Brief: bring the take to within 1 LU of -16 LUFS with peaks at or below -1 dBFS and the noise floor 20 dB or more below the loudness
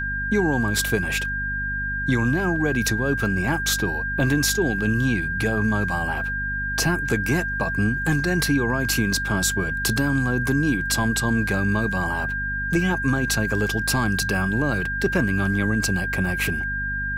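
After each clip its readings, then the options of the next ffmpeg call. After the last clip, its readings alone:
hum 50 Hz; harmonics up to 250 Hz; hum level -29 dBFS; steady tone 1600 Hz; tone level -25 dBFS; loudness -22.5 LUFS; peak -8.5 dBFS; loudness target -16.0 LUFS
-> -af "bandreject=f=50:t=h:w=6,bandreject=f=100:t=h:w=6,bandreject=f=150:t=h:w=6,bandreject=f=200:t=h:w=6,bandreject=f=250:t=h:w=6"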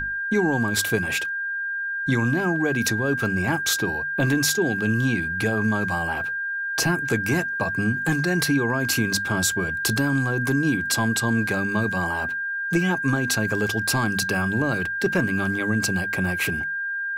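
hum none; steady tone 1600 Hz; tone level -25 dBFS
-> -af "bandreject=f=1.6k:w=30"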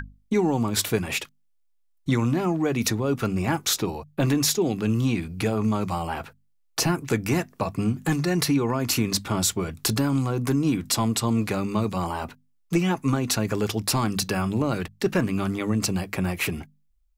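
steady tone none; loudness -25.0 LUFS; peak -10.5 dBFS; loudness target -16.0 LUFS
-> -af "volume=9dB"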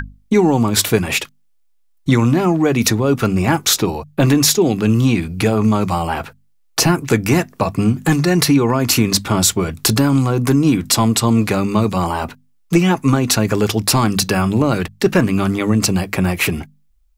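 loudness -16.0 LUFS; peak -1.5 dBFS; noise floor -56 dBFS

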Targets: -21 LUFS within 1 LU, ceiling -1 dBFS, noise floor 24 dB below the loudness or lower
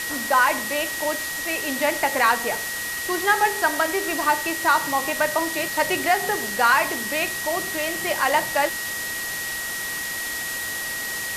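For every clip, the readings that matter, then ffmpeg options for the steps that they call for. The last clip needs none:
steady tone 1900 Hz; tone level -29 dBFS; noise floor -29 dBFS; noise floor target -47 dBFS; loudness -22.5 LUFS; peak -6.5 dBFS; loudness target -21.0 LUFS
-> -af "bandreject=f=1.9k:w=30"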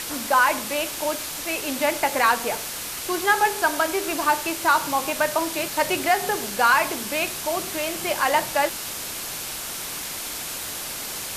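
steady tone none; noise floor -32 dBFS; noise floor target -48 dBFS
-> -af "afftdn=nr=16:nf=-32"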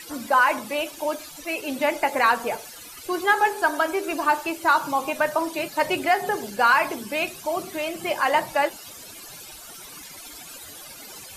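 noise floor -42 dBFS; noise floor target -48 dBFS
-> -af "afftdn=nr=6:nf=-42"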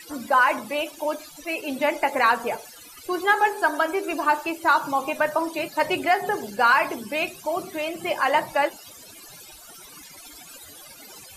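noise floor -45 dBFS; noise floor target -48 dBFS
-> -af "afftdn=nr=6:nf=-45"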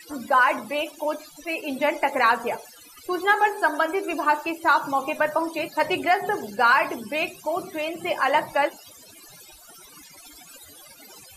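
noise floor -48 dBFS; loudness -23.5 LUFS; peak -7.5 dBFS; loudness target -21.0 LUFS
-> -af "volume=2.5dB"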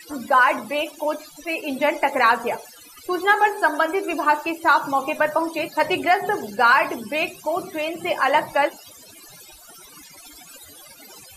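loudness -21.0 LUFS; peak -5.0 dBFS; noise floor -46 dBFS

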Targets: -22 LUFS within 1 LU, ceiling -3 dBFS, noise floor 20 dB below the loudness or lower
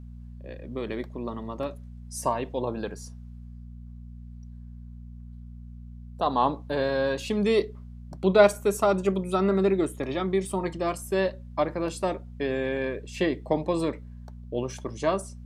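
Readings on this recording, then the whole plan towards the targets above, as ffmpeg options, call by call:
hum 60 Hz; harmonics up to 240 Hz; hum level -40 dBFS; loudness -27.0 LUFS; peak -4.5 dBFS; loudness target -22.0 LUFS
-> -af "bandreject=f=60:t=h:w=4,bandreject=f=120:t=h:w=4,bandreject=f=180:t=h:w=4,bandreject=f=240:t=h:w=4"
-af "volume=5dB,alimiter=limit=-3dB:level=0:latency=1"

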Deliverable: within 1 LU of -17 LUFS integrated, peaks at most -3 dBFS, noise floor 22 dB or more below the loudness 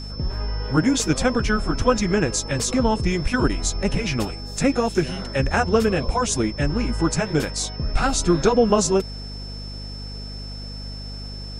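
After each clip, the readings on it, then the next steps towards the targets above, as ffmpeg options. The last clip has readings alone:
hum 50 Hz; harmonics up to 250 Hz; hum level -32 dBFS; steady tone 5300 Hz; tone level -37 dBFS; loudness -22.0 LUFS; peak -5.0 dBFS; loudness target -17.0 LUFS
-> -af "bandreject=f=50:t=h:w=4,bandreject=f=100:t=h:w=4,bandreject=f=150:t=h:w=4,bandreject=f=200:t=h:w=4,bandreject=f=250:t=h:w=4"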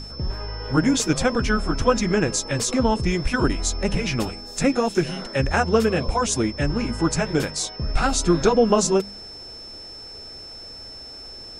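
hum none; steady tone 5300 Hz; tone level -37 dBFS
-> -af "bandreject=f=5.3k:w=30"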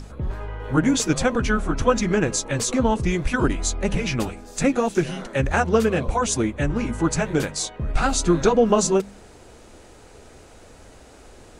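steady tone none; loudness -22.0 LUFS; peak -5.0 dBFS; loudness target -17.0 LUFS
-> -af "volume=5dB,alimiter=limit=-3dB:level=0:latency=1"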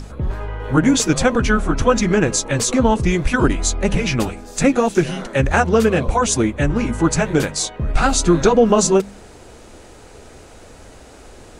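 loudness -17.5 LUFS; peak -3.0 dBFS; noise floor -42 dBFS

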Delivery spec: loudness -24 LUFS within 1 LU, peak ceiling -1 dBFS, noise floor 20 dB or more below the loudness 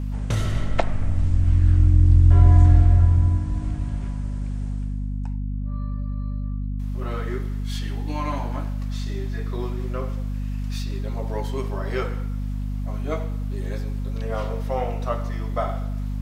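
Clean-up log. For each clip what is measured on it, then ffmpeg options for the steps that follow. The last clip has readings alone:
hum 50 Hz; harmonics up to 250 Hz; hum level -24 dBFS; loudness -24.0 LUFS; peak -3.0 dBFS; loudness target -24.0 LUFS
-> -af "bandreject=f=50:t=h:w=6,bandreject=f=100:t=h:w=6,bandreject=f=150:t=h:w=6,bandreject=f=200:t=h:w=6,bandreject=f=250:t=h:w=6"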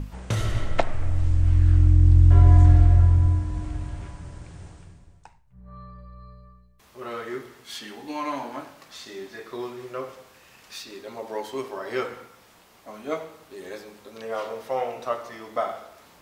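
hum none; loudness -22.0 LUFS; peak -3.5 dBFS; loudness target -24.0 LUFS
-> -af "volume=-2dB"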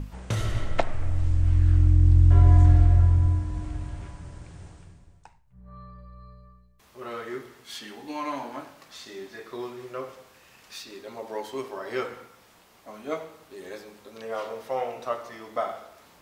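loudness -24.0 LUFS; peak -5.5 dBFS; noise floor -57 dBFS

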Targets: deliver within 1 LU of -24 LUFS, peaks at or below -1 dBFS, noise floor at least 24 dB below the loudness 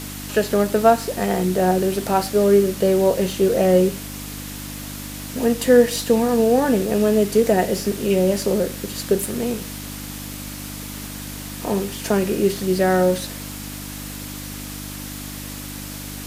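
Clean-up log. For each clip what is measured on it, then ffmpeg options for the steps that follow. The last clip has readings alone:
hum 50 Hz; harmonics up to 300 Hz; hum level -33 dBFS; noise floor -33 dBFS; noise floor target -43 dBFS; loudness -19.0 LUFS; peak -1.5 dBFS; loudness target -24.0 LUFS
-> -af "bandreject=f=50:t=h:w=4,bandreject=f=100:t=h:w=4,bandreject=f=150:t=h:w=4,bandreject=f=200:t=h:w=4,bandreject=f=250:t=h:w=4,bandreject=f=300:t=h:w=4"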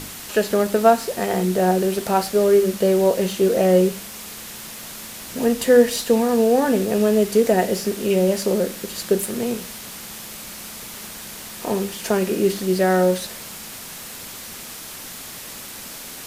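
hum none; noise floor -36 dBFS; noise floor target -44 dBFS
-> -af "afftdn=nr=8:nf=-36"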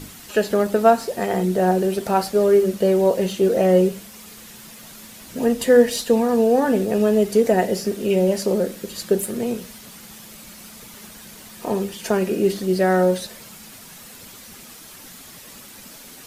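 noise floor -42 dBFS; noise floor target -44 dBFS
-> -af "afftdn=nr=6:nf=-42"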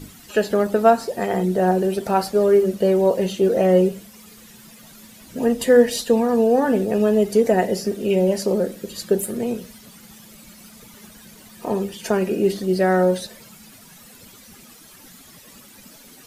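noise floor -46 dBFS; loudness -19.5 LUFS; peak -2.0 dBFS; loudness target -24.0 LUFS
-> -af "volume=-4.5dB"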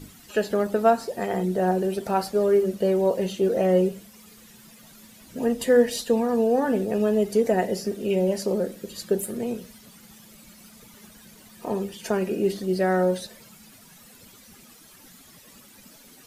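loudness -24.0 LUFS; peak -6.5 dBFS; noise floor -51 dBFS

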